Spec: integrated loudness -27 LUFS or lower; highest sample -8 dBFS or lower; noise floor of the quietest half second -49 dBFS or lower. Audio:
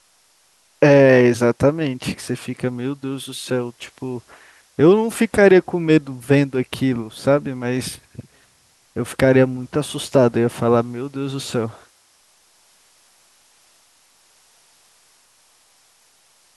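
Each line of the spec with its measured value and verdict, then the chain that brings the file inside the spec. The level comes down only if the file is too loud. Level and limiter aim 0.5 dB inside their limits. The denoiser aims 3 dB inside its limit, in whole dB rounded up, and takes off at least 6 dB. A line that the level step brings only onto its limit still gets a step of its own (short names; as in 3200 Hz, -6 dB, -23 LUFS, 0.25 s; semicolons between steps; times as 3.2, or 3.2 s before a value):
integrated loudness -18.5 LUFS: fail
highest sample -2.5 dBFS: fail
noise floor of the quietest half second -58 dBFS: OK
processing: gain -9 dB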